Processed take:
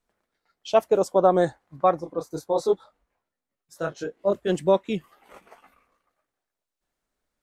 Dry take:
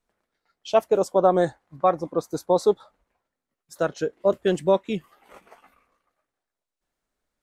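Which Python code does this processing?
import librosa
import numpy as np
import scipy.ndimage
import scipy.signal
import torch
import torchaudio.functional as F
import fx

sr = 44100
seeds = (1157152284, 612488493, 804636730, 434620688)

y = fx.detune_double(x, sr, cents=24, at=(1.99, 4.48), fade=0.02)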